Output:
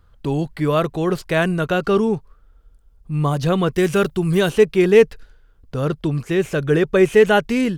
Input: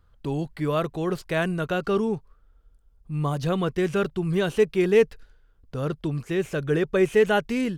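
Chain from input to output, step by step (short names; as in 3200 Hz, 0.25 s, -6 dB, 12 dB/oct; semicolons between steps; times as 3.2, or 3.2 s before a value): 3.73–4.5 high shelf 7200 Hz +11 dB; gain +6.5 dB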